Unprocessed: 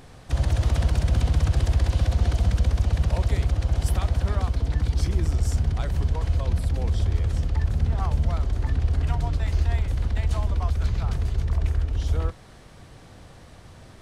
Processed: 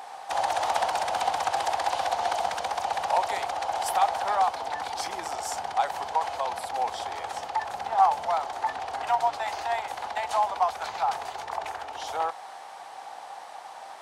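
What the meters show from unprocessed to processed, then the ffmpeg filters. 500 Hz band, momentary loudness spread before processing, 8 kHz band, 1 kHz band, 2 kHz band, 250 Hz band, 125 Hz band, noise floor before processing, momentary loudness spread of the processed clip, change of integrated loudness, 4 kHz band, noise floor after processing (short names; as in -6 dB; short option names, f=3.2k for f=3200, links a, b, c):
+5.0 dB, 3 LU, +3.5 dB, +15.5 dB, +5.5 dB, -16.0 dB, under -30 dB, -47 dBFS, 13 LU, -3.5 dB, +4.0 dB, -43 dBFS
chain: -af "highpass=f=810:t=q:w=7.2,volume=3.5dB"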